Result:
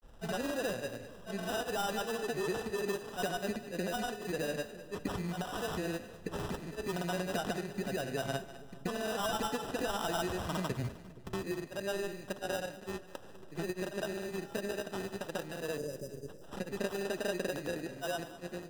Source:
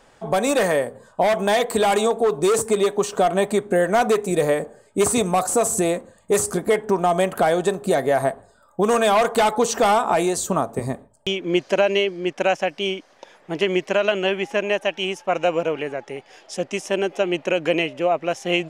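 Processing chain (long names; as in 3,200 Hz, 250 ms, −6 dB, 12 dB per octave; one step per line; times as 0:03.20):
fade-out on the ending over 0.78 s
low-shelf EQ 180 Hz +12 dB
in parallel at +1 dB: brickwall limiter −17.5 dBFS, peak gain reduction 14 dB
on the sum: downward compressor 4 to 1, threshold −27 dBFS, peak gain reduction 15 dB
sample-rate reduction 2,200 Hz, jitter 0%
time-frequency box erased 0:15.79–0:16.37, 640–4,800 Hz
granular cloud, pitch spread up and down by 0 semitones
echo with a time of its own for lows and highs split 480 Hz, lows 471 ms, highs 202 ms, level −13 dB
on a send at −20 dB: convolution reverb RT60 0.35 s, pre-delay 15 ms
on the sum: multiband upward and downward expander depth 40%
level −7.5 dB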